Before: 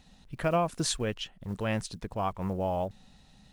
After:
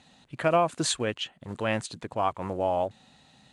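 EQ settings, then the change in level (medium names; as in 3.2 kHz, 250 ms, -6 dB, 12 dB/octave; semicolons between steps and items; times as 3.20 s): cabinet simulation 150–9300 Hz, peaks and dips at 190 Hz -9 dB, 430 Hz -3 dB, 5.4 kHz -8 dB; +5.0 dB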